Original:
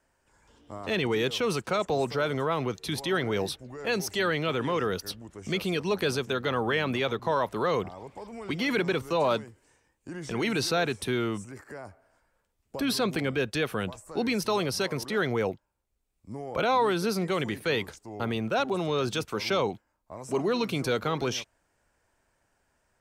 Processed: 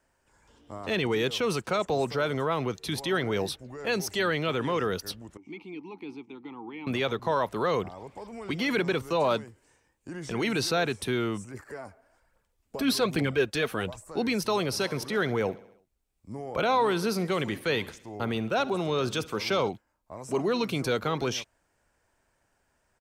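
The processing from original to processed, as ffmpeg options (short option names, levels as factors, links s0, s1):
-filter_complex "[0:a]asettb=1/sr,asplit=3[s0][s1][s2];[s0]atrim=end=5.374[s3];[s1]atrim=start=5.37:end=6.87,asetpts=PTS-STARTPTS,afade=t=in:d=0.004:c=qsin,afade=t=out:st=1.496:d=0.004:c=qsin,asplit=3[s4][s5][s6];[s4]bandpass=f=300:t=q:w=8,volume=1[s7];[s5]bandpass=f=870:t=q:w=8,volume=0.501[s8];[s6]bandpass=f=2240:t=q:w=8,volume=0.355[s9];[s7][s8][s9]amix=inputs=3:normalize=0[s10];[s2]atrim=start=6.866[s11];[s3][s10]acrossfade=d=0.004:c1=hsin:c2=qsin[s12];[s12][s11]acrossfade=d=0.004:c1=qsin:c2=hsin,asettb=1/sr,asplit=3[s13][s14][s15];[s13]atrim=end=11.544[s16];[s14]atrim=start=11.54:end=14.04,asetpts=PTS-STARTPTS,afade=t=in:d=0.004:c=qsin,afade=t=out:st=2.496:d=0.004:c=qsin,aphaser=in_gain=1:out_gain=1:delay=4.9:decay=0.45:speed=1.2:type=triangular[s17];[s15]atrim=start=14.036[s18];[s16][s17]acrossfade=d=0.004:c1=hsin:c2=qsin[s19];[s19][s18]acrossfade=d=0.004:c1=qsin:c2=hsin,asplit=3[s20][s21][s22];[s20]afade=t=out:st=14.68:d=0.02[s23];[s21]aecho=1:1:66|132|198|264|330:0.106|0.0625|0.0369|0.0218|0.0128,afade=t=in:st=14.68:d=0.02,afade=t=out:st=19.68:d=0.02[s24];[s22]afade=t=in:st=19.68:d=0.02[s25];[s23][s24][s25]amix=inputs=3:normalize=0"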